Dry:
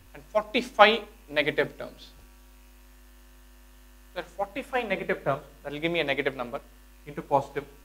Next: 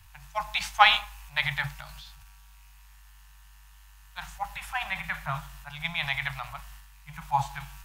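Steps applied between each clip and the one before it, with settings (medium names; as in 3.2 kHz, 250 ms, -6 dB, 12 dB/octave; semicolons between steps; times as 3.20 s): transient shaper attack +1 dB, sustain +8 dB; elliptic band-stop 150–820 Hz, stop band 40 dB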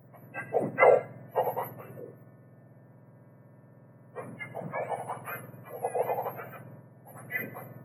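spectrum inverted on a logarithmic axis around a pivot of 1.3 kHz; peaking EQ 550 Hz +8 dB 0.55 oct; trim -3.5 dB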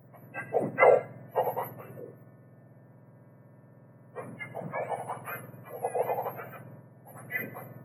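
no audible change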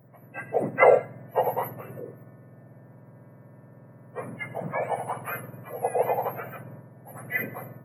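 level rider gain up to 5 dB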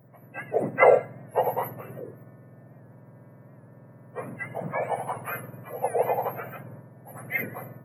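warped record 78 rpm, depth 100 cents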